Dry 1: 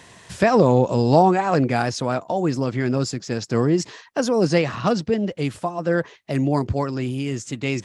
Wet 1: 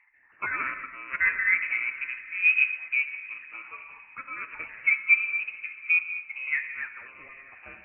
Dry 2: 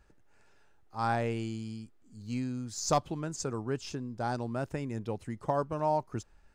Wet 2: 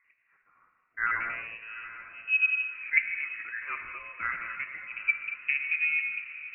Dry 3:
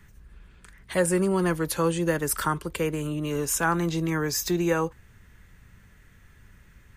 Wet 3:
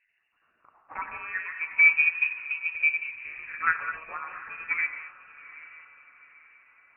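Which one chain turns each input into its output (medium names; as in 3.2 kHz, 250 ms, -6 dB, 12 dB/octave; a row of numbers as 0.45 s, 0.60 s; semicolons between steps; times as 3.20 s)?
random holes in the spectrogram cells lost 34%; in parallel at -5 dB: sample-and-hold 22×; on the sum: wah-wah 0.31 Hz 300–1600 Hz, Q 3.3; echo that smears into a reverb 794 ms, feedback 43%, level -13.5 dB; gated-style reverb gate 260 ms flat, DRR 4 dB; frequency inversion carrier 2.8 kHz; upward expansion 1.5:1, over -36 dBFS; peak normalisation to -9 dBFS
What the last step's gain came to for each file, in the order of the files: +2.0 dB, +12.0 dB, +7.0 dB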